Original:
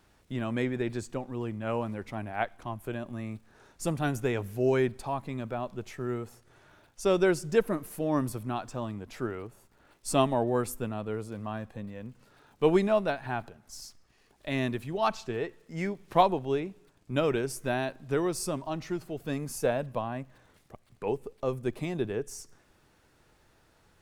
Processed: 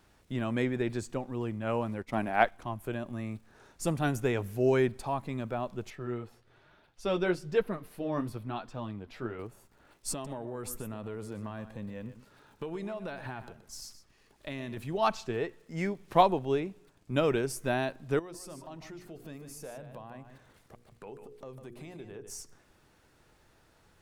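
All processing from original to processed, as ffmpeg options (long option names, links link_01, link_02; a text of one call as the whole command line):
ffmpeg -i in.wav -filter_complex "[0:a]asettb=1/sr,asplit=3[link_01][link_02][link_03];[link_01]atrim=end=2.024[link_04];[link_02]atrim=start=2.02:end=2.52,asetpts=PTS-STARTPTS,afade=type=in:duration=0.004:curve=qsin,afade=type=out:start_time=0.496:duration=0.004:curve=qsin,agate=range=-33dB:threshold=-40dB:ratio=3:release=100:detection=peak,equalizer=frequency=100:width=5.2:gain=-14,acontrast=63[link_05];[link_03]atrim=start=2.516[link_06];[link_04][link_05]acrossfade=duration=0.004:curve1=hsin:curve2=qsin[link_07];[link_07][link_06]acrossfade=duration=0.004:curve1=qsin:curve2=hsin,asettb=1/sr,asplit=3[link_08][link_09][link_10];[link_08]atrim=end=5.904[link_11];[link_09]atrim=start=5.9:end=9.39,asetpts=PTS-STARTPTS,afade=type=in:duration=0.004:curve=qsin,afade=type=out:start_time=3.486:duration=0.004:curve=qsin,highshelf=frequency=5300:width_type=q:width=1.5:gain=-7.5,flanger=delay=4.1:depth=7.9:regen=-43:speed=1.1:shape=triangular[link_12];[link_10]atrim=start=9.386[link_13];[link_11][link_12]acrossfade=duration=0.004:curve1=hsin:curve2=qsin[link_14];[link_14][link_13]acrossfade=duration=0.004:curve1=qsin:curve2=hsin,asettb=1/sr,asplit=3[link_15][link_16][link_17];[link_15]atrim=end=10.124[link_18];[link_16]atrim=start=10.12:end=14.77,asetpts=PTS-STARTPTS,afade=type=in:duration=0.004:curve=qsin,afade=type=out:start_time=4.646:duration=0.004:curve=qsin,acompressor=threshold=-33dB:ratio=20:attack=3.2:release=140:knee=1:detection=peak,bandreject=frequency=730:width=14,aecho=1:1:124:0.237,atrim=end_sample=205065[link_19];[link_17]atrim=start=14.766[link_20];[link_18][link_19]acrossfade=duration=0.004:curve1=hsin:curve2=qsin[link_21];[link_21][link_20]acrossfade=duration=0.004:curve1=qsin:curve2=hsin,asettb=1/sr,asplit=3[link_22][link_23][link_24];[link_22]atrim=end=18.194[link_25];[link_23]atrim=start=18.19:end=22.3,asetpts=PTS-STARTPTS,afade=type=in:duration=0.004:curve=qsin,afade=type=out:start_time=4.106:duration=0.004:curve=qsin,bandreject=frequency=60:width_type=h:width=6,bandreject=frequency=120:width_type=h:width=6,bandreject=frequency=180:width_type=h:width=6,bandreject=frequency=240:width_type=h:width=6,bandreject=frequency=300:width_type=h:width=6,bandreject=frequency=360:width_type=h:width=6,bandreject=frequency=420:width_type=h:width=6,bandreject=frequency=480:width_type=h:width=6,acompressor=threshold=-46dB:ratio=3:attack=3.2:release=140:knee=1:detection=peak,aecho=1:1:150:0.355,atrim=end_sample=181251[link_26];[link_24]atrim=start=22.296[link_27];[link_25][link_26]acrossfade=duration=0.004:curve1=hsin:curve2=qsin[link_28];[link_28][link_27]acrossfade=duration=0.004:curve1=qsin:curve2=hsin" out.wav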